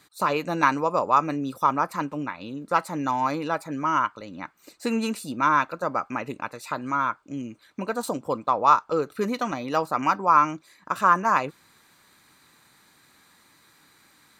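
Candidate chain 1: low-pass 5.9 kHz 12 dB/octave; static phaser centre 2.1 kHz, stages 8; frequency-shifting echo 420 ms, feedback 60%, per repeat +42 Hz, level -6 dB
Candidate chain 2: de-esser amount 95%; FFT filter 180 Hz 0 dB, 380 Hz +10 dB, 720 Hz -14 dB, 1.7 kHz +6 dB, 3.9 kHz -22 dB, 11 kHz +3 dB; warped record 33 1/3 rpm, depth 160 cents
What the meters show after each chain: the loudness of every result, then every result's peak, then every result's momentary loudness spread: -27.5 LUFS, -26.5 LUFS; -8.5 dBFS, -10.5 dBFS; 13 LU, 9 LU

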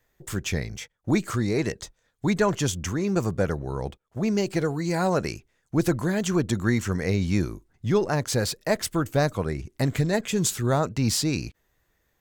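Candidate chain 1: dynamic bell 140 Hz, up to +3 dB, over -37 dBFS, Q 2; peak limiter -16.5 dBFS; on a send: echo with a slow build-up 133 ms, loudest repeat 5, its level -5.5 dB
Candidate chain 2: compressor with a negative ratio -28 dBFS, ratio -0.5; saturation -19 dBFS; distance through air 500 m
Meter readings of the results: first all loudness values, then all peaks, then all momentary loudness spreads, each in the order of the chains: -22.0 LUFS, -34.0 LUFS; -9.0 dBFS, -19.5 dBFS; 3 LU, 7 LU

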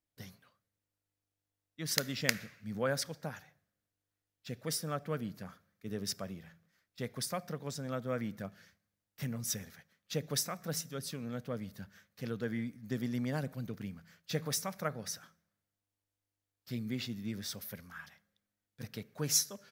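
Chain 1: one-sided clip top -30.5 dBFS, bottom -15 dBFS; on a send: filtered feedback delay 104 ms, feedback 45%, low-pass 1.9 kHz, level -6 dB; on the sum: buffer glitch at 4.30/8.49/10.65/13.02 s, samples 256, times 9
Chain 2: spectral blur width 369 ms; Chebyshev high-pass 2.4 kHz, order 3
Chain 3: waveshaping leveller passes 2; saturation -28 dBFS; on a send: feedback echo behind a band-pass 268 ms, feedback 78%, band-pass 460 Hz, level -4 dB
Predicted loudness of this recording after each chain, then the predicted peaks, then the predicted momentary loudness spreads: -38.5 LUFS, -49.0 LUFS, -35.5 LUFS; -14.5 dBFS, -26.5 dBFS, -22.5 dBFS; 14 LU, 20 LU, 13 LU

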